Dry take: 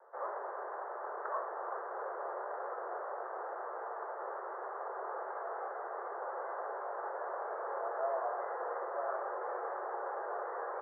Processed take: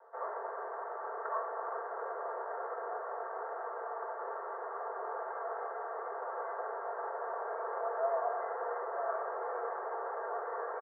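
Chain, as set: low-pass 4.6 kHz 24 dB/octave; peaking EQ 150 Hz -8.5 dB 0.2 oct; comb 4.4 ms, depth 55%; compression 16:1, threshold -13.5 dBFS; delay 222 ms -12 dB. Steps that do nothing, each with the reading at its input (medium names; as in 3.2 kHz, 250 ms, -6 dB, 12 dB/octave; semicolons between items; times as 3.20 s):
low-pass 4.6 kHz: input has nothing above 2 kHz; peaking EQ 150 Hz: input has nothing below 300 Hz; compression, threshold -13.5 dBFS: peak at its input -22.0 dBFS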